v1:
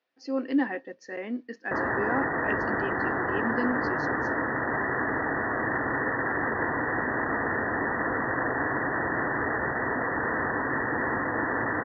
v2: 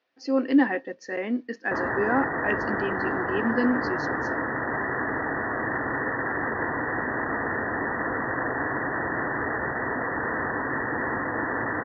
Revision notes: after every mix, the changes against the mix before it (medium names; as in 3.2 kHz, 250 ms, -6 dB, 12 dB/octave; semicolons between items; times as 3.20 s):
speech +5.5 dB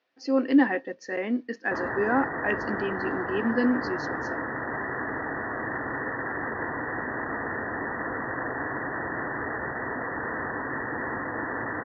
background -3.5 dB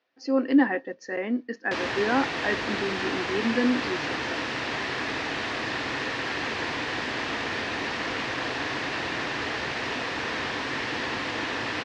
background: remove brick-wall FIR low-pass 2 kHz